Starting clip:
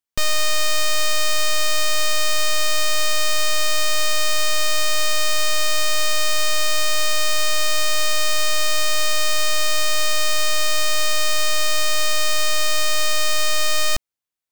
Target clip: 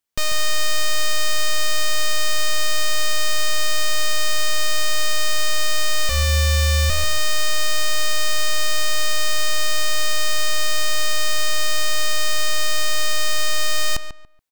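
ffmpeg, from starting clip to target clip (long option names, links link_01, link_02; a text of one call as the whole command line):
ffmpeg -i in.wav -filter_complex "[0:a]alimiter=limit=-22.5dB:level=0:latency=1,asettb=1/sr,asplit=3[link_01][link_02][link_03];[link_01]atrim=end=6.094[link_04];[link_02]atrim=start=6.09:end=6.9,asetpts=PTS-STARTPTS,afade=type=in:duration=0.004:curve=qsin,afade=type=out:start_time=0.806:duration=0.004:curve=qsin,afreqshift=-76[link_05];[link_03]atrim=start=6.896[link_06];[link_04][link_05]acrossfade=duration=0.004:curve1=hsin:curve2=qsin[link_07];[link_07][link_06]acrossfade=duration=0.004:curve1=qsin:curve2=hsin,asplit=2[link_08][link_09];[link_09]adelay=142,lowpass=frequency=2600:poles=1,volume=-9.5dB,asplit=2[link_10][link_11];[link_11]adelay=142,lowpass=frequency=2600:poles=1,volume=0.25,asplit=2[link_12][link_13];[link_13]adelay=142,lowpass=frequency=2600:poles=1,volume=0.25[link_14];[link_08][link_10][link_12][link_14]amix=inputs=4:normalize=0,volume=5.5dB" out.wav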